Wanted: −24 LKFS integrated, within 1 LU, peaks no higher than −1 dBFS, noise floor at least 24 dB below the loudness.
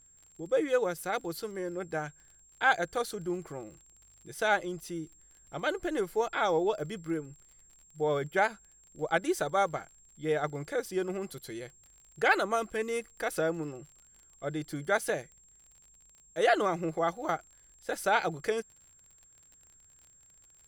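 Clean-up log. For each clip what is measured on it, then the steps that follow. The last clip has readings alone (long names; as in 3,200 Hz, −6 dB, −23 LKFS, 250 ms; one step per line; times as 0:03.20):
crackle rate 36 per second; interfering tone 7,500 Hz; level of the tone −58 dBFS; integrated loudness −31.5 LKFS; sample peak −12.0 dBFS; target loudness −24.0 LKFS
→ click removal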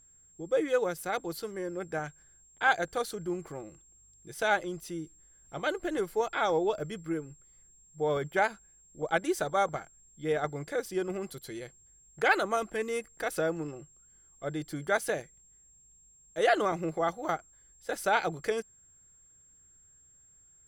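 crackle rate 0.68 per second; interfering tone 7,500 Hz; level of the tone −58 dBFS
→ notch filter 7,500 Hz, Q 30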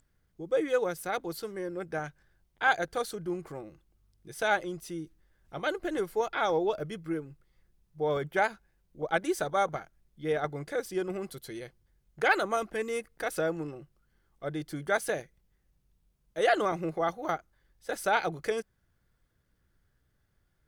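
interfering tone none found; integrated loudness −31.5 LKFS; sample peak −12.0 dBFS; target loudness −24.0 LKFS
→ level +7.5 dB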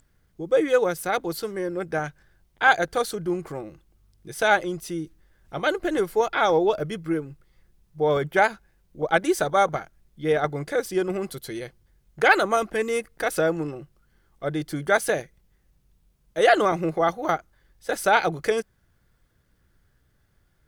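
integrated loudness −24.0 LKFS; sample peak −4.5 dBFS; background noise floor −66 dBFS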